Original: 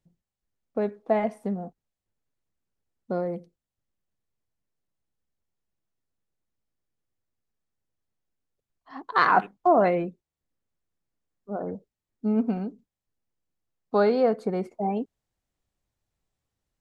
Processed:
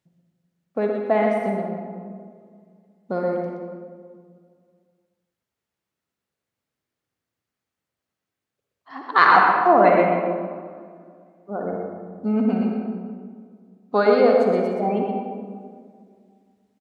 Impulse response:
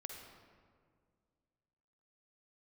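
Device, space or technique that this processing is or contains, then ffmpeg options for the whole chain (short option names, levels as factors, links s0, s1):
PA in a hall: -filter_complex "[0:a]highpass=100,equalizer=f=2000:t=o:w=2.5:g=5,aecho=1:1:122:0.531[s0];[1:a]atrim=start_sample=2205[s1];[s0][s1]afir=irnorm=-1:irlink=0,volume=2.11"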